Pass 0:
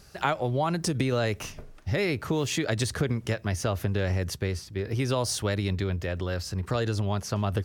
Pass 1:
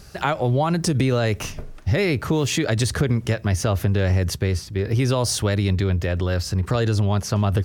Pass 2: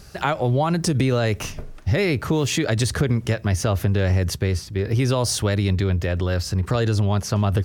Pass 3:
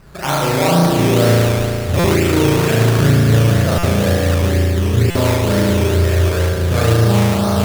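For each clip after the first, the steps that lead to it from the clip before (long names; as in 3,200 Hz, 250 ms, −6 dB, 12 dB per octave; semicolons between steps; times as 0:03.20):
low-shelf EQ 230 Hz +4 dB; in parallel at +1 dB: brickwall limiter −20.5 dBFS, peak gain reduction 9.5 dB
no processing that can be heard
spring reverb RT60 2.8 s, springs 35 ms, chirp 25 ms, DRR −9 dB; sample-and-hold swept by an LFO 12×, swing 60% 2.1 Hz; buffer that repeats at 0:01.99/0:03.78/0:05.10, samples 256, times 8; level −1.5 dB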